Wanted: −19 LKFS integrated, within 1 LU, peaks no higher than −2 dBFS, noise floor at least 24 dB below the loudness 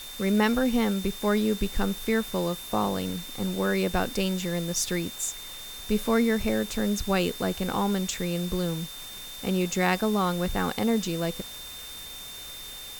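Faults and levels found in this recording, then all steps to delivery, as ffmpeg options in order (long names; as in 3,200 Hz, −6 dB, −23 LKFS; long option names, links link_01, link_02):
interfering tone 3,600 Hz; level of the tone −41 dBFS; background noise floor −41 dBFS; target noise floor −52 dBFS; integrated loudness −27.5 LKFS; sample peak −9.0 dBFS; target loudness −19.0 LKFS
→ -af "bandreject=frequency=3600:width=30"
-af "afftdn=noise_reduction=11:noise_floor=-41"
-af "volume=8.5dB,alimiter=limit=-2dB:level=0:latency=1"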